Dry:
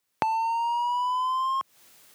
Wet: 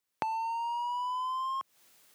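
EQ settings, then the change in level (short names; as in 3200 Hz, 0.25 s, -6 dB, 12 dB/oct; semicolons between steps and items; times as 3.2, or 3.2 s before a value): low shelf 94 Hz -6 dB; -7.0 dB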